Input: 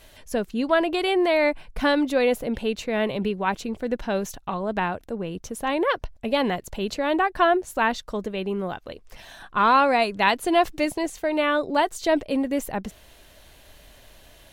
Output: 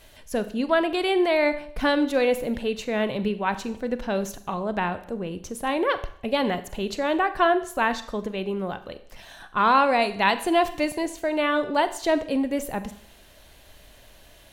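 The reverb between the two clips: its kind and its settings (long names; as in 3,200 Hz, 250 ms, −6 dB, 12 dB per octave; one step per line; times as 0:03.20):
four-comb reverb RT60 0.6 s, combs from 30 ms, DRR 11.5 dB
level −1 dB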